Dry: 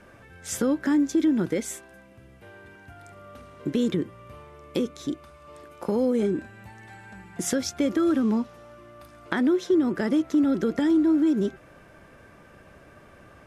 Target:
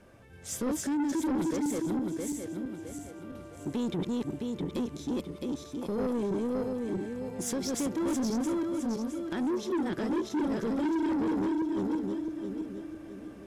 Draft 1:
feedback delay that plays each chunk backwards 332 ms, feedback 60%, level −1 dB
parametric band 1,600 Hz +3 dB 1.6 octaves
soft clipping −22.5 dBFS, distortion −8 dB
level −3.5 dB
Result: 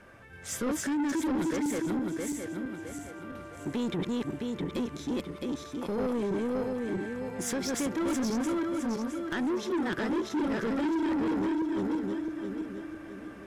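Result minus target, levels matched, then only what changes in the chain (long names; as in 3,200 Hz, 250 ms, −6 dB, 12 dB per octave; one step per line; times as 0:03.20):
2,000 Hz band +6.0 dB
change: parametric band 1,600 Hz −6.5 dB 1.6 octaves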